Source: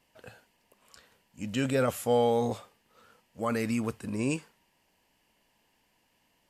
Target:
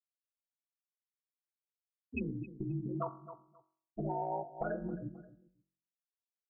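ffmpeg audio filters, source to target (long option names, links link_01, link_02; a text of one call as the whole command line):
ffmpeg -i in.wav -filter_complex "[0:a]areverse,aeval=exprs='val(0)*sin(2*PI*88*n/s)':channel_layout=same,bandreject=frequency=550:width=12,afftfilt=real='re*gte(hypot(re,im),0.0891)':imag='im*gte(hypot(re,im),0.0891)':win_size=1024:overlap=0.75,aemphasis=mode=production:type=bsi,aecho=1:1:1.2:0.64,asplit=2[link_01][link_02];[link_02]aecho=0:1:265|530:0.0891|0.016[link_03];[link_01][link_03]amix=inputs=2:normalize=0,acompressor=threshold=-41dB:ratio=10,bandreject=frequency=45.83:width_type=h:width=4,bandreject=frequency=91.66:width_type=h:width=4,bandreject=frequency=137.49:width_type=h:width=4,bandreject=frequency=183.32:width_type=h:width=4,bandreject=frequency=229.15:width_type=h:width=4,bandreject=frequency=274.98:width_type=h:width=4,bandreject=frequency=320.81:width_type=h:width=4,bandreject=frequency=366.64:width_type=h:width=4,bandreject=frequency=412.47:width_type=h:width=4,bandreject=frequency=458.3:width_type=h:width=4,bandreject=frequency=504.13:width_type=h:width=4,bandreject=frequency=549.96:width_type=h:width=4,bandreject=frequency=595.79:width_type=h:width=4,bandreject=frequency=641.62:width_type=h:width=4,bandreject=frequency=687.45:width_type=h:width=4,bandreject=frequency=733.28:width_type=h:width=4,bandreject=frequency=779.11:width_type=h:width=4,bandreject=frequency=824.94:width_type=h:width=4,bandreject=frequency=870.77:width_type=h:width=4,bandreject=frequency=916.6:width_type=h:width=4,bandreject=frequency=962.43:width_type=h:width=4,bandreject=frequency=1008.26:width_type=h:width=4,bandreject=frequency=1054.09:width_type=h:width=4,bandreject=frequency=1099.92:width_type=h:width=4,bandreject=frequency=1145.75:width_type=h:width=4,bandreject=frequency=1191.58:width_type=h:width=4,bandreject=frequency=1237.41:width_type=h:width=4,bandreject=frequency=1283.24:width_type=h:width=4,bandreject=frequency=1329.07:width_type=h:width=4,bandreject=frequency=1374.9:width_type=h:width=4,bandreject=frequency=1420.73:width_type=h:width=4,bandreject=frequency=1466.56:width_type=h:width=4,bandreject=frequency=1512.39:width_type=h:width=4,bandreject=frequency=1558.22:width_type=h:width=4,bandreject=frequency=1604.05:width_type=h:width=4,bandreject=frequency=1649.88:width_type=h:width=4,volume=8.5dB" out.wav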